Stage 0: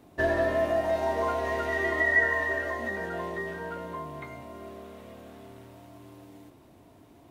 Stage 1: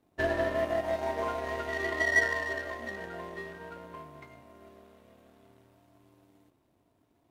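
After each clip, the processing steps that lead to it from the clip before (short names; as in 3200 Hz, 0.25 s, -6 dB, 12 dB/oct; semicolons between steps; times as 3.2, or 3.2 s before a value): power-law curve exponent 1.4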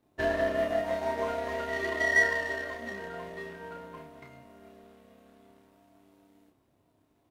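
doubler 30 ms -3 dB; gain -1 dB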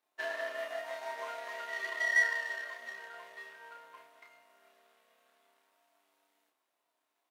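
HPF 1000 Hz 12 dB/oct; gain -3 dB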